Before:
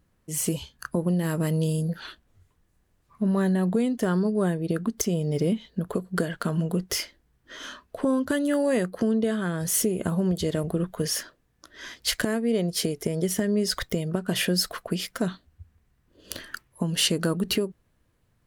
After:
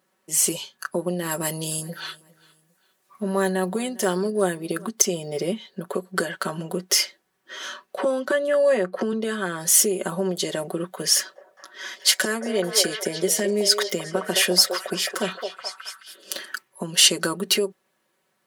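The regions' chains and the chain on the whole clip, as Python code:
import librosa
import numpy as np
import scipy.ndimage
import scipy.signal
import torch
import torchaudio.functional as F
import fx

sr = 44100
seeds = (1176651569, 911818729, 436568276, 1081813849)

y = fx.chain(x, sr, fx.high_shelf(hz=6700.0, db=7.5),
    fx.echo_feedback(ms=403, feedback_pct=36, wet_db=-23.5), at=(1.31, 4.89))
y = fx.chain(y, sr, fx.lowpass(hz=2300.0, slope=6),
    fx.band_squash(depth_pct=100), at=(7.97, 9.13))
y = fx.chain(y, sr, fx.highpass(hz=120.0, slope=24),
    fx.echo_stepped(ms=214, hz=580.0, octaves=0.7, feedback_pct=70, wet_db=-2), at=(11.14, 16.46))
y = scipy.signal.sosfilt(scipy.signal.butter(2, 400.0, 'highpass', fs=sr, output='sos'), y)
y = fx.dynamic_eq(y, sr, hz=6600.0, q=0.75, threshold_db=-42.0, ratio=4.0, max_db=5)
y = y + 0.72 * np.pad(y, (int(5.3 * sr / 1000.0), 0))[:len(y)]
y = y * 10.0 ** (3.5 / 20.0)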